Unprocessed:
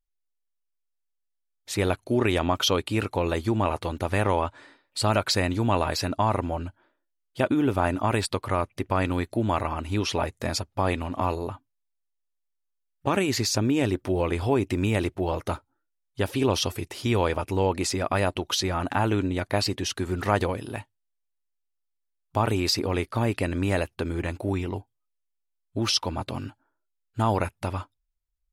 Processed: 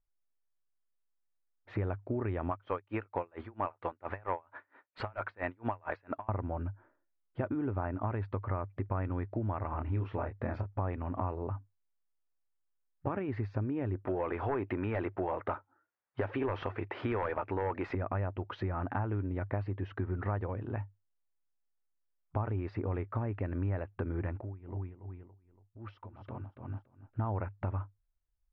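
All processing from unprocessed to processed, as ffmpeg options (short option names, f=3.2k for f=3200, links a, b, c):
-filter_complex "[0:a]asettb=1/sr,asplit=3[a][b][c];[a]atrim=end=2.514[d];[b]atrim=start=2.51:end=6.29,asetpts=PTS-STARTPTS,afade=t=in:d=0.004:c=qsin,afade=t=out:st=3.776:d=0.004:c=qsin,highpass=f=960:p=1,aeval=exprs='0.316*sin(PI/2*2.24*val(0)/0.316)':c=same,aeval=exprs='val(0)*pow(10,-37*(0.5-0.5*cos(2*PI*4.4*n/s))/20)':c=same[e];[c]atrim=start=6.286[f];[d][e]acrossfade=d=0.004:c1=hsin:c2=qsin[g];[g][f]acrossfade=d=0.004:c1=qsin:c2=hsin,asettb=1/sr,asplit=3[h][i][j];[h]atrim=end=9.704[k];[i]atrim=start=9.7:end=10.79,asetpts=PTS-STARTPTS,afade=t=in:d=0.004:c=qsin,afade=t=out:st=1.086:d=0.004:c=qsin,asplit=2[l][m];[m]adelay=27,volume=-6dB[n];[l][n]amix=inputs=2:normalize=0,atrim=end_sample=48069,acrusher=bits=9:mode=log:mix=0:aa=0.000001[o];[j]atrim=start=10.786[p];[k][o]acrossfade=d=0.004:c1=hsin:c2=qsin[q];[q][p]acrossfade=d=0.004:c1=qsin:c2=hsin,asettb=1/sr,asplit=3[r][s][t];[r]atrim=end=14.074[u];[s]atrim=start=14.07:end=17.95,asetpts=PTS-STARTPTS,afade=t=in:d=0.004:c=qsin,afade=t=out:st=3.876:d=0.004:c=qsin,highpass=f=720:p=1,aeval=exprs='0.237*sin(PI/2*2.51*val(0)/0.237)':c=same[v];[t]atrim=start=17.946[w];[u][v]acrossfade=d=0.004:c1=hsin:c2=qsin[x];[x][w]acrossfade=d=0.004:c1=qsin:c2=hsin,asettb=1/sr,asplit=3[y][z][aa];[y]atrim=end=24.404[ab];[z]atrim=start=24.4:end=27.19,asetpts=PTS-STARTPTS,afade=t=in:d=0.004:c=qsin,afade=t=out:st=2.786:d=0.004:c=qsin,aecho=1:1:283|566|849:0.422|0.0801|0.0152,atrim=end_sample=123039,acompressor=threshold=-38dB:ratio=8:attack=3.2:release=140:knee=1:detection=peak,tremolo=f=2.6:d=0.85[ac];[aa]atrim=start=27.186[ad];[ab][ac]acrossfade=d=0.004:c1=hsin:c2=qsin[ae];[ae][ad]acrossfade=d=0.004:c1=qsin:c2=hsin,lowpass=f=1.8k:w=0.5412,lowpass=f=1.8k:w=1.3066,equalizer=f=100:w=4.7:g=10.5,acompressor=threshold=-33dB:ratio=4"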